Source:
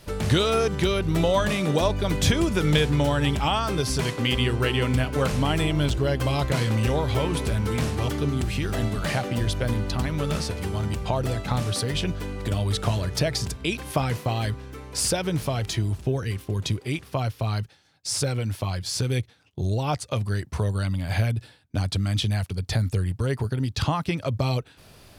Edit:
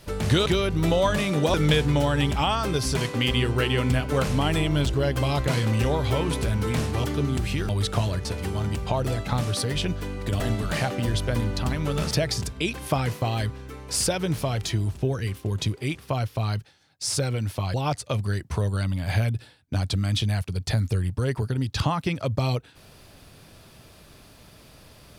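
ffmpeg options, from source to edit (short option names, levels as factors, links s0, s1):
-filter_complex "[0:a]asplit=8[s0][s1][s2][s3][s4][s5][s6][s7];[s0]atrim=end=0.462[s8];[s1]atrim=start=0.778:end=1.862[s9];[s2]atrim=start=2.578:end=8.732[s10];[s3]atrim=start=12.588:end=13.152[s11];[s4]atrim=start=10.438:end=12.592[s12];[s5]atrim=start=8.728:end=10.442[s13];[s6]atrim=start=13.148:end=18.782[s14];[s7]atrim=start=19.758[s15];[s8][s9]acrossfade=d=0.004:c1=hsin:c2=hsin[s16];[s16][s10]acrossfade=d=0.004:c1=hsin:c2=hsin[s17];[s17][s11]acrossfade=d=0.004:c1=hsin:c2=hsin[s18];[s18][s12]acrossfade=d=0.004:c1=hsin:c2=hsin[s19];[s19][s13]acrossfade=d=0.004:c1=hsin:c2=hsin[s20];[s20][s14]acrossfade=d=0.004:c1=hsin:c2=hsin[s21];[s21][s15]acrossfade=d=0.004:c1=hsin:c2=hsin"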